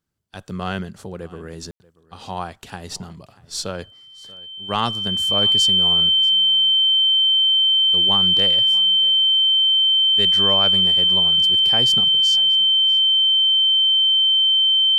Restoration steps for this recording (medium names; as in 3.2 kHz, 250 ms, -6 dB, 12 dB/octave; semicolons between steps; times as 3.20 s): band-stop 3.1 kHz, Q 30; room tone fill 1.71–1.80 s; inverse comb 635 ms -22 dB